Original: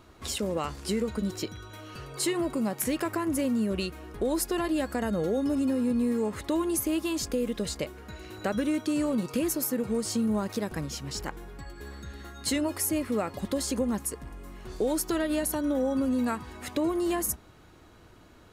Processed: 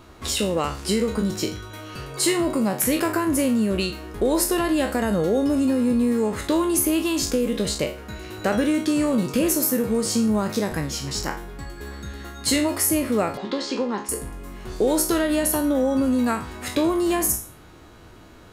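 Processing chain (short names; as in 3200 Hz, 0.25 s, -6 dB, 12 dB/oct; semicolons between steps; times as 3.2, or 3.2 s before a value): spectral trails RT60 0.39 s; 13.37–14.09 speaker cabinet 310–4900 Hz, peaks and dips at 410 Hz +4 dB, 600 Hz -8 dB, 930 Hz +4 dB; gain +6 dB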